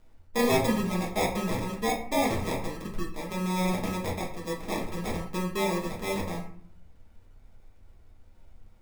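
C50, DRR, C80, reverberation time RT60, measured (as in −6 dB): 6.5 dB, −4.0 dB, 10.0 dB, 0.55 s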